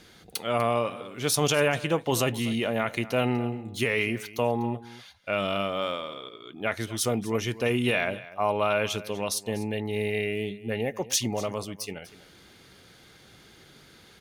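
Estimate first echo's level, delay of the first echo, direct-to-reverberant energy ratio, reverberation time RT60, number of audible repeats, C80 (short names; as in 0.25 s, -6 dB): -17.5 dB, 0.246 s, none, none, 1, none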